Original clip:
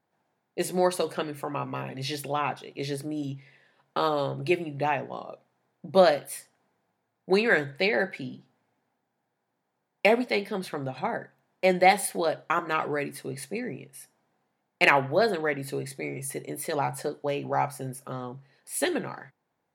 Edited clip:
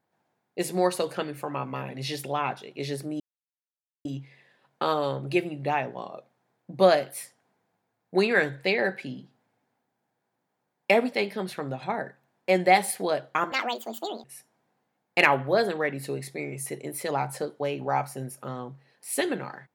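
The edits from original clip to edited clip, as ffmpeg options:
-filter_complex "[0:a]asplit=4[a][b][c][d];[a]atrim=end=3.2,asetpts=PTS-STARTPTS,afade=t=out:st=3.196:d=0.004:c=hsin,apad=pad_dur=0.85[e];[b]atrim=start=3.2:end=12.674,asetpts=PTS-STARTPTS,afade=t=in:d=0.004:c=hsin[f];[c]atrim=start=12.67:end=13.88,asetpts=PTS-STARTPTS,asetrate=74088,aresample=44100,atrim=end_sample=31762,asetpts=PTS-STARTPTS[g];[d]atrim=start=13.876[h];[e][f]concat=n=2:v=0:a=1[i];[i][g]acrossfade=d=0.004:c1=hsin:c2=hsin[j];[j][h]acrossfade=d=0.004:c1=hsin:c2=hsin"

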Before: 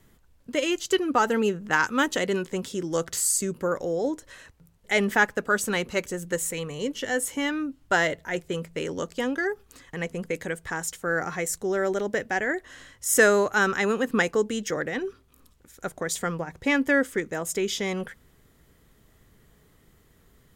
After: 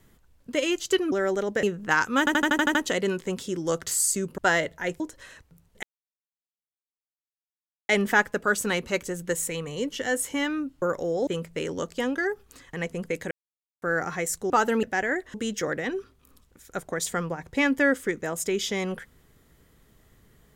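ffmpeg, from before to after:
-filter_complex "[0:a]asplit=20[a][b][c][d][e][f][g][h][i][j][k][l][m][n][o][p][q][r][s][t];[a]atrim=end=1.122[u];[b]atrim=start=11.698:end=12.212[v];[c]atrim=start=1.448:end=2.092[w];[d]atrim=start=2.008:end=2.092[x];[e]atrim=start=2.008:end=2.092[y];[f]atrim=start=2.008:end=2.092[z];[g]atrim=start=2.008:end=2.092[aa];[h]atrim=start=2.008:end=2.092[ab];[i]atrim=start=2.008:end=2.092[ac];[j]atrim=start=2.008:end=3.642[ad];[k]atrim=start=7.848:end=8.472[ae];[l]atrim=start=4.088:end=4.92,asetpts=PTS-STARTPTS,afade=t=out:st=0.828:d=0.004:c=hsin,apad=pad_dur=2.06[af];[m]atrim=start=4.92:end=7.852,asetpts=PTS-STARTPTS,afade=t=in:d=0.004:c=hsin[ag];[n]atrim=start=3.638:end=4.092[ah];[o]atrim=start=8.468:end=10.51,asetpts=PTS-STARTPTS,afade=t=out:st=2.038:d=0.004:c=hsin[ai];[p]atrim=start=10.51:end=11.02,asetpts=PTS-STARTPTS,volume=0[aj];[q]atrim=start=11.02:end=11.702,asetpts=PTS-STARTPTS,afade=t=in:d=0.004:c=hsin[ak];[r]atrim=start=1.118:end=1.452[al];[s]atrim=start=12.208:end=12.722[am];[t]atrim=start=14.428[an];[u][v]acrossfade=d=0.004:c1=hsin:c2=hsin[ao];[ao][w]acrossfade=d=0.004:c1=hsin:c2=hsin[ap];[ap][x]acrossfade=d=0.004:c1=hsin:c2=hsin[aq];[aq][y]acrossfade=d=0.004:c1=hsin:c2=hsin[ar];[ar][z]acrossfade=d=0.004:c1=hsin:c2=hsin[as];[as][aa]acrossfade=d=0.004:c1=hsin:c2=hsin[at];[at][ab]acrossfade=d=0.004:c1=hsin:c2=hsin[au];[au][ac]acrossfade=d=0.004:c1=hsin:c2=hsin[av];[av][ad]acrossfade=d=0.004:c1=hsin:c2=hsin[aw];[aw][ae]acrossfade=d=0.004:c1=hsin:c2=hsin[ax];[af][ag]concat=n=2:v=0:a=1[ay];[ax][ay]acrossfade=d=0.004:c1=hsin:c2=hsin[az];[az][ah]acrossfade=d=0.004:c1=hsin:c2=hsin[ba];[ai][aj][ak]concat=n=3:v=0:a=1[bb];[ba][bb]acrossfade=d=0.004:c1=hsin:c2=hsin[bc];[bc][al]acrossfade=d=0.004:c1=hsin:c2=hsin[bd];[bd][am]acrossfade=d=0.004:c1=hsin:c2=hsin[be];[be][an]acrossfade=d=0.004:c1=hsin:c2=hsin"

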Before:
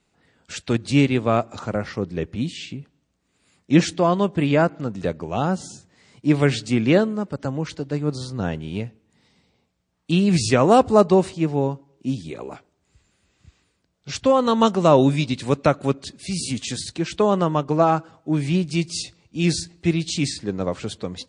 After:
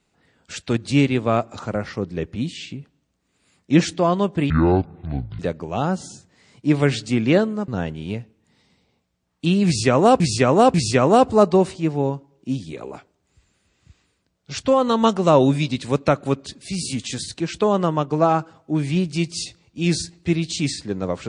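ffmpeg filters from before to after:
-filter_complex "[0:a]asplit=6[a][b][c][d][e][f];[a]atrim=end=4.504[g];[b]atrim=start=4.5:end=4.99,asetpts=PTS-STARTPTS,asetrate=24255,aresample=44100,atrim=end_sample=39289,asetpts=PTS-STARTPTS[h];[c]atrim=start=4.986:end=7.282[i];[d]atrim=start=8.338:end=10.862[j];[e]atrim=start=10.318:end=10.862[k];[f]atrim=start=10.318[l];[g][h]acrossfade=d=0.004:c1=hsin:c2=hsin[m];[m][i]acrossfade=d=0.004:c1=hsin:c2=hsin[n];[n][j]acrossfade=d=0.004:c1=hsin:c2=hsin[o];[o][k]acrossfade=d=0.004:c1=hsin:c2=hsin[p];[p][l]acrossfade=d=0.004:c1=hsin:c2=hsin"

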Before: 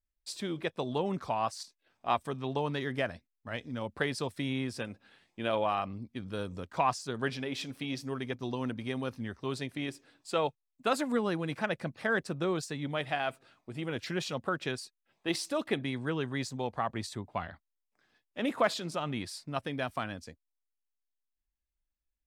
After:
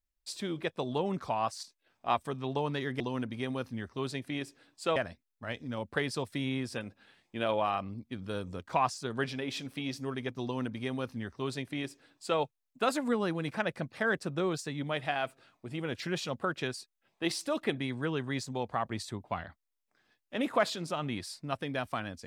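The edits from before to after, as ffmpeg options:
-filter_complex "[0:a]asplit=3[a][b][c];[a]atrim=end=3.002[d];[b]atrim=start=8.468:end=10.432[e];[c]atrim=start=2.998[f];[d][e]acrossfade=d=0.004:c1=hsin:c2=hsin[g];[g][f]acrossfade=d=0.004:c1=hsin:c2=hsin"

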